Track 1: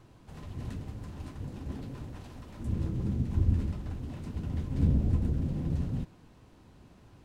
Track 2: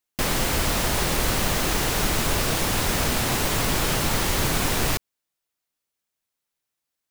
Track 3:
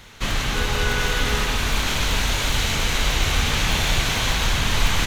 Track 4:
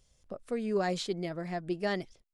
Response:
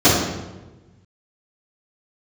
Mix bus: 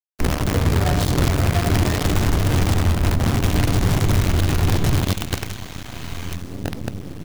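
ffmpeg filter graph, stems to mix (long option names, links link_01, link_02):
-filter_complex "[0:a]highpass=120,adelay=1700,volume=-14.5dB,asplit=2[link_01][link_02];[link_02]volume=-14.5dB[link_03];[1:a]aeval=exprs='sgn(val(0))*max(abs(val(0))-0.0112,0)':channel_layout=same,aemphasis=mode=reproduction:type=riaa,volume=-9dB,asplit=3[link_04][link_05][link_06];[link_05]volume=-23.5dB[link_07];[link_06]volume=-20.5dB[link_08];[2:a]adelay=1300,volume=-15dB,asplit=3[link_09][link_10][link_11];[link_09]atrim=end=2.77,asetpts=PTS-STARTPTS,afade=type=out:start_time=2.766:duration=0.004:curve=hsin[link_12];[link_10]atrim=start=2.77:end=3.44,asetpts=PTS-STARTPTS,volume=0[link_13];[link_11]atrim=start=3.44,asetpts=PTS-STARTPTS,afade=type=in:duration=0.004:curve=hsin[link_14];[link_12][link_13][link_14]concat=n=3:v=0:a=1,asplit=3[link_15][link_16][link_17];[link_16]volume=-23.5dB[link_18];[link_17]volume=-15dB[link_19];[3:a]highpass=1000,alimiter=level_in=7dB:limit=-24dB:level=0:latency=1:release=180,volume=-7dB,aeval=exprs='clip(val(0),-1,0.00422)':channel_layout=same,volume=-3dB,asplit=3[link_20][link_21][link_22];[link_21]volume=-7dB[link_23];[link_22]apad=whole_len=313204[link_24];[link_04][link_24]sidechaincompress=threshold=-59dB:ratio=10:attack=16:release=188[link_25];[4:a]atrim=start_sample=2205[link_26];[link_03][link_07][link_18][link_23]amix=inputs=4:normalize=0[link_27];[link_27][link_26]afir=irnorm=-1:irlink=0[link_28];[link_08][link_19]amix=inputs=2:normalize=0,aecho=0:1:76|152|228|304|380|456|532:1|0.47|0.221|0.104|0.0488|0.0229|0.0108[link_29];[link_01][link_25][link_15][link_20][link_28][link_29]amix=inputs=6:normalize=0,acrusher=bits=4:dc=4:mix=0:aa=0.000001,alimiter=limit=-9dB:level=0:latency=1:release=178"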